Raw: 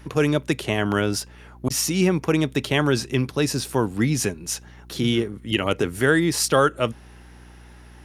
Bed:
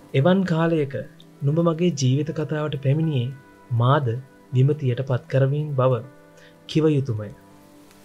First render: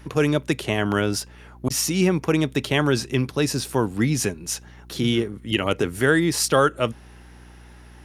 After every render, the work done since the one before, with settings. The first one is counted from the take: no audible change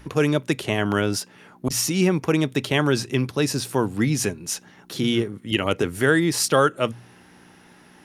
de-hum 60 Hz, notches 2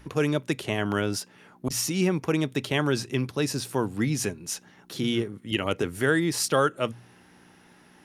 trim -4.5 dB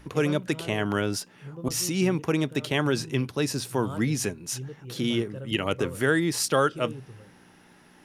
add bed -20 dB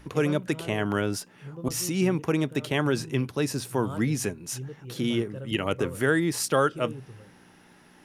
dynamic bell 4.4 kHz, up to -4 dB, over -45 dBFS, Q 0.92

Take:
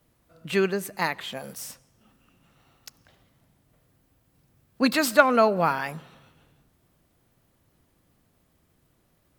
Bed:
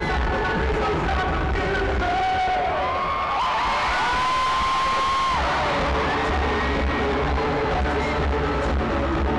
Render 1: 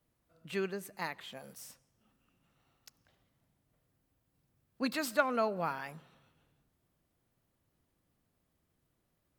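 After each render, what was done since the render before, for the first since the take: trim -12 dB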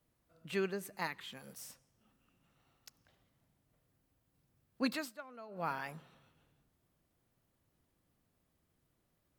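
1.07–1.47 s: peaking EQ 640 Hz -13.5 dB 0.59 oct; 4.88–5.73 s: dip -20 dB, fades 0.25 s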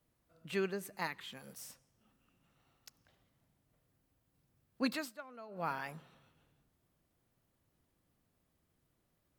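no audible change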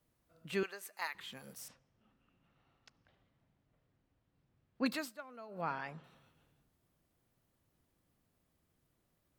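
0.63–1.15 s: high-pass 810 Hz; 1.68–4.86 s: low-pass 3.5 kHz; 5.61–6.04 s: distance through air 110 m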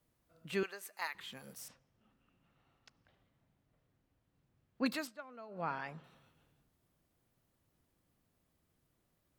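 5.07–5.73 s: distance through air 64 m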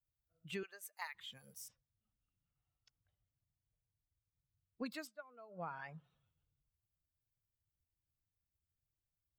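expander on every frequency bin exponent 1.5; compression 6:1, threshold -40 dBFS, peak gain reduction 10.5 dB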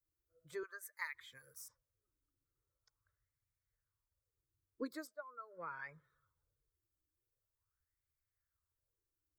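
static phaser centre 750 Hz, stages 6; sweeping bell 0.43 Hz 290–2400 Hz +14 dB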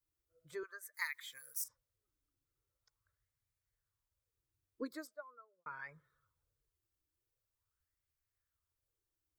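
0.94–1.64 s: tilt EQ +4 dB/octave; 5.13–5.66 s: studio fade out

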